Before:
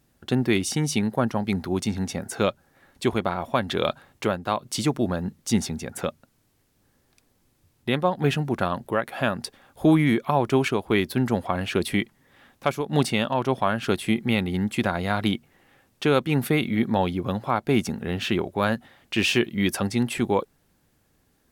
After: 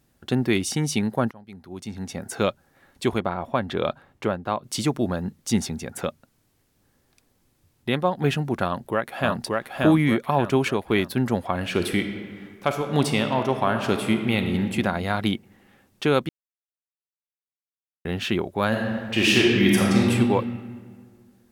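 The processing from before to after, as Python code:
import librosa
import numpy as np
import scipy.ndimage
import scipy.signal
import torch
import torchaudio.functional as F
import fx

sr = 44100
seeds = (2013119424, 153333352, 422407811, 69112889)

y = fx.high_shelf(x, sr, hz=3300.0, db=-11.0, at=(3.2, 4.64))
y = fx.echo_throw(y, sr, start_s=8.65, length_s=0.78, ms=580, feedback_pct=40, wet_db=-1.5)
y = fx.reverb_throw(y, sr, start_s=11.56, length_s=3.14, rt60_s=1.9, drr_db=6.0)
y = fx.reverb_throw(y, sr, start_s=18.68, length_s=1.43, rt60_s=1.9, drr_db=-3.5)
y = fx.edit(y, sr, fx.fade_in_from(start_s=1.31, length_s=1.01, curve='qua', floor_db=-21.0),
    fx.silence(start_s=16.29, length_s=1.76), tone=tone)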